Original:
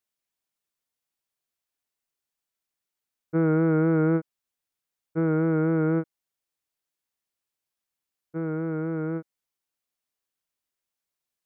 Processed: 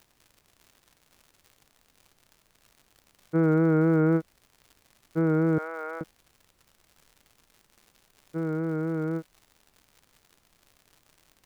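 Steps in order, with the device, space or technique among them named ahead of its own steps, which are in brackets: vinyl LP (crackle 140/s -43 dBFS; pink noise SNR 39 dB); 5.58–6.01 HPF 630 Hz 24 dB/oct

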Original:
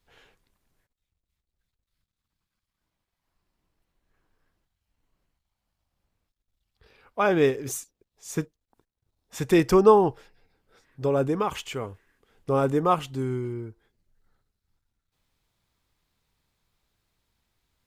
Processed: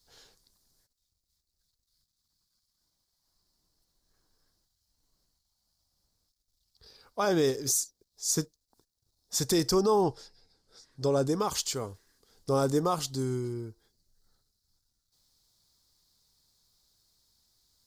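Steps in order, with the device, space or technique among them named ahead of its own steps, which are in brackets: 10.01–11.26 LPF 10000 Hz 12 dB/oct; over-bright horn tweeter (resonant high shelf 3500 Hz +10.5 dB, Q 3; limiter -14.5 dBFS, peak gain reduction 9 dB); gain -2.5 dB

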